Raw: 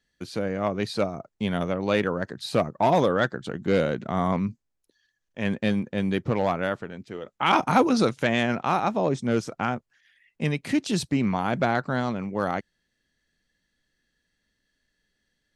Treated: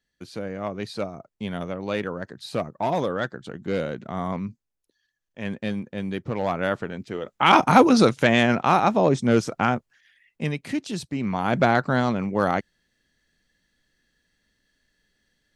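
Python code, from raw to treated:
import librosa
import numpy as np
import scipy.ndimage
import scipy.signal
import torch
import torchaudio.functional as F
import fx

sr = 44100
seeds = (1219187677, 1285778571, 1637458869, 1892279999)

y = fx.gain(x, sr, db=fx.line((6.29, -4.0), (6.83, 5.0), (9.74, 5.0), (11.09, -6.0), (11.57, 4.5)))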